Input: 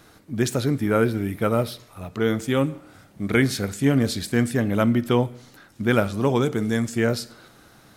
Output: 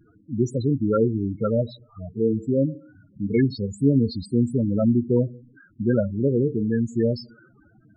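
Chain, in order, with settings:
spectral peaks only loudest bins 8
0:04.58–0:05.83: treble cut that deepens with the level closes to 940 Hz, closed at −20.5 dBFS
level +1 dB

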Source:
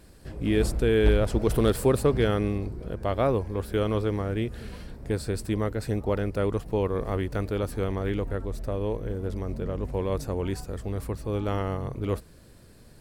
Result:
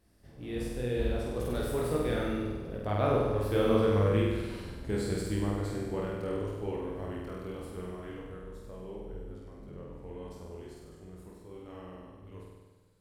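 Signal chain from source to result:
source passing by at 0:04.04, 23 m/s, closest 22 metres
chorus effect 0.74 Hz, delay 18.5 ms, depth 7.8 ms
flutter between parallel walls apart 8.4 metres, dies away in 1.3 s

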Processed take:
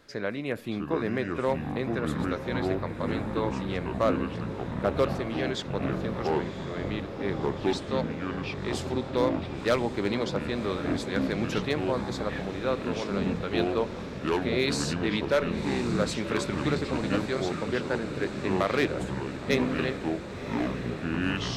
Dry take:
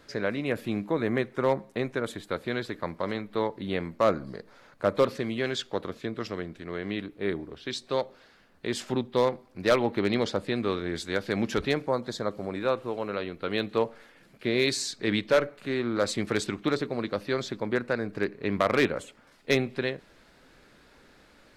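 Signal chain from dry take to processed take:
delay with pitch and tempo change per echo 590 ms, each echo −6 semitones, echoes 3
feedback delay with all-pass diffusion 1,068 ms, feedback 72%, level −11 dB
level −2.5 dB

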